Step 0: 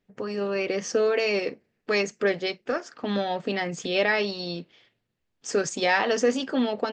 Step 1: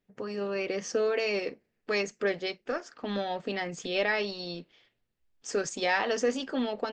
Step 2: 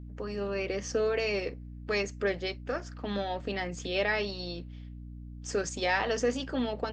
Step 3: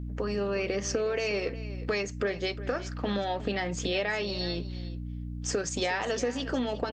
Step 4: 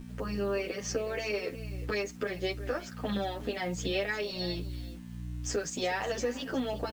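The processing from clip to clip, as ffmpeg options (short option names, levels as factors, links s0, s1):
-af "asubboost=boost=4.5:cutoff=55,volume=0.596"
-af "aeval=exprs='val(0)+0.00891*(sin(2*PI*60*n/s)+sin(2*PI*2*60*n/s)/2+sin(2*PI*3*60*n/s)/3+sin(2*PI*4*60*n/s)/4+sin(2*PI*5*60*n/s)/5)':c=same,volume=0.891"
-af "acompressor=threshold=0.02:ratio=6,aecho=1:1:360:0.168,volume=2.37"
-filter_complex "[0:a]acrusher=bits=8:mix=0:aa=0.000001,asplit=2[s0][s1];[s1]adelay=9.4,afreqshift=1.4[s2];[s0][s2]amix=inputs=2:normalize=1"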